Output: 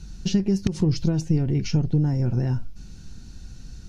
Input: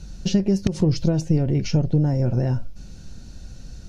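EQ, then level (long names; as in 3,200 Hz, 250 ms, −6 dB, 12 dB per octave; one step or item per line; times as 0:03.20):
parametric band 580 Hz −11 dB 0.47 octaves
−1.5 dB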